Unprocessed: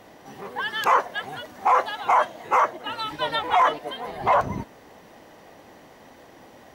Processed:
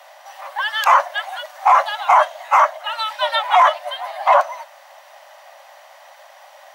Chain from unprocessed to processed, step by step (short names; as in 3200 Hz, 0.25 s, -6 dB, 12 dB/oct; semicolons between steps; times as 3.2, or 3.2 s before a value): Chebyshev high-pass 550 Hz, order 10; gain +7 dB